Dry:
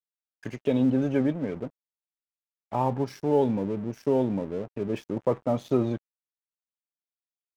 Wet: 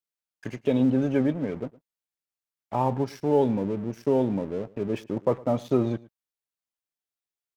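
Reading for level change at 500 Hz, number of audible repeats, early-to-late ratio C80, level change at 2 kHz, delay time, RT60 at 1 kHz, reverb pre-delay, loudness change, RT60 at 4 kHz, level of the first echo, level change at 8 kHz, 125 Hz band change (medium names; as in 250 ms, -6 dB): +1.0 dB, 1, no reverb, +1.0 dB, 111 ms, no reverb, no reverb, +1.0 dB, no reverb, -22.0 dB, no reading, +1.0 dB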